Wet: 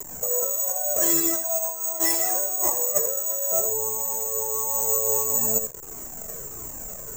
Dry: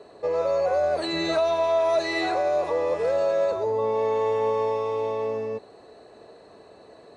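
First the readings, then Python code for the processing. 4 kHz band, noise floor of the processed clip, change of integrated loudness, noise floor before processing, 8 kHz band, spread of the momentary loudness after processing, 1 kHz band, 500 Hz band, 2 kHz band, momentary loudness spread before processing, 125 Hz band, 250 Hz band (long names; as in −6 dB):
−4.0 dB, −38 dBFS, +3.0 dB, −50 dBFS, can't be measured, 14 LU, −7.5 dB, −9.0 dB, −6.0 dB, 6 LU, −3.0 dB, −2.5 dB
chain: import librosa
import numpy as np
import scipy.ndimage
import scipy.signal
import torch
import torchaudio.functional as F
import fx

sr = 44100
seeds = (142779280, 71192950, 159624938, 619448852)

p1 = fx.delta_hold(x, sr, step_db=-42.0)
p2 = scipy.signal.sosfilt(scipy.signal.butter(2, 1900.0, 'lowpass', fs=sr, output='sos'), p1)
p3 = fx.peak_eq(p2, sr, hz=91.0, db=-4.0, octaves=0.47)
p4 = fx.over_compress(p3, sr, threshold_db=-31.0, ratio=-1.0)
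p5 = p4 + fx.echo_single(p4, sr, ms=81, db=-8.0, dry=0)
p6 = (np.kron(p5[::6], np.eye(6)[0]) * 6)[:len(p5)]
p7 = fx.comb_cascade(p6, sr, direction='falling', hz=1.5)
y = F.gain(torch.from_numpy(p7), 3.0).numpy()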